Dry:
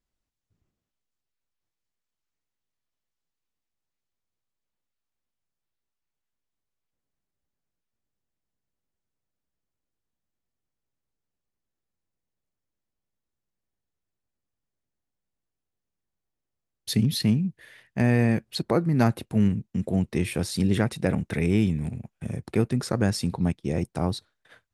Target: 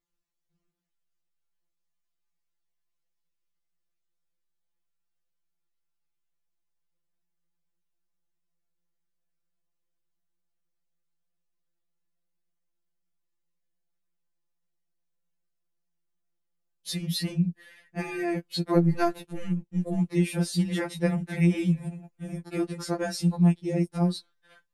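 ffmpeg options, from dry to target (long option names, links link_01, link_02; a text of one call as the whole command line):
ffmpeg -i in.wav -filter_complex "[0:a]asettb=1/sr,asplit=3[link_01][link_02][link_03];[link_01]atrim=end=18.774[link_04];[link_02]atrim=start=18.77:end=19.99,asetpts=PTS-STARTPTS,afade=type=in:duration=0.004:curve=qsin,afade=type=out:start_time=1.216:duration=0.004:curve=qsin,aeval=exprs='if(lt(val(0),0),0.708*val(0),val(0))':channel_layout=same[link_05];[link_03]atrim=start=19.986[link_06];[link_04][link_05]acrossfade=duration=0.004:curve1=hsin:curve2=qsin[link_07];[link_07][link_06]acrossfade=duration=0.004:curve1=qsin:curve2=hsin,afftfilt=real='re*2.83*eq(mod(b,8),0)':imag='im*2.83*eq(mod(b,8),0)':win_size=2048:overlap=0.75" out.wav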